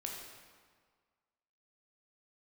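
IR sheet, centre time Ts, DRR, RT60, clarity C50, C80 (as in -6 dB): 71 ms, -1.0 dB, 1.7 s, 1.5 dB, 3.5 dB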